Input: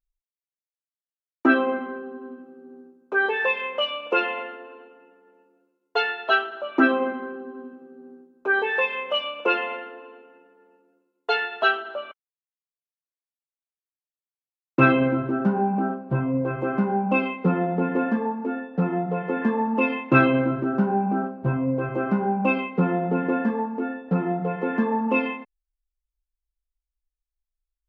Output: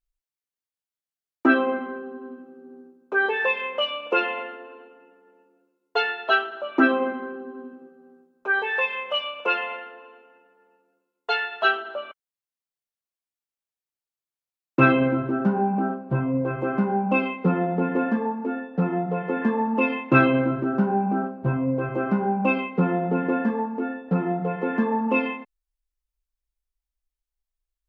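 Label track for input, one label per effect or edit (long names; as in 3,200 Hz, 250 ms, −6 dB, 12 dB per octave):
7.890000	11.650000	parametric band 300 Hz −9.5 dB 1.2 octaves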